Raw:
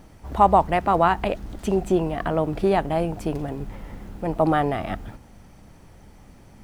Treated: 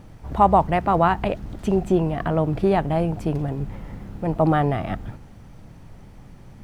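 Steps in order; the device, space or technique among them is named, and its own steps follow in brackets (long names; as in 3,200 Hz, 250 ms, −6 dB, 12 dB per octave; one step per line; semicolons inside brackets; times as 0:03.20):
car interior (parametric band 130 Hz +8 dB 0.93 octaves; high-shelf EQ 4,900 Hz −6 dB; brown noise bed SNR 24 dB)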